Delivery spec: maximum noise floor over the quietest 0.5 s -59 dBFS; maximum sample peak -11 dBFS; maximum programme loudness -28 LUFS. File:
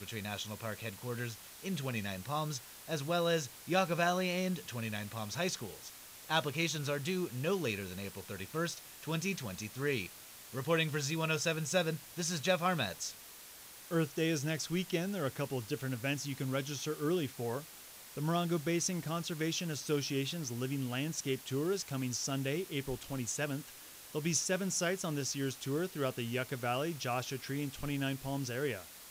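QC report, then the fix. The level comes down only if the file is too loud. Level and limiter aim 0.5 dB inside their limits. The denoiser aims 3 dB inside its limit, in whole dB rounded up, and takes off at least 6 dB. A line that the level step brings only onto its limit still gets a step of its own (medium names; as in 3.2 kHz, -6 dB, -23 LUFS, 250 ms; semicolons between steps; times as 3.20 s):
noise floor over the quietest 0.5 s -53 dBFS: fail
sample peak -19.0 dBFS: pass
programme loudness -36.0 LUFS: pass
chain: noise reduction 9 dB, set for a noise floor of -53 dBFS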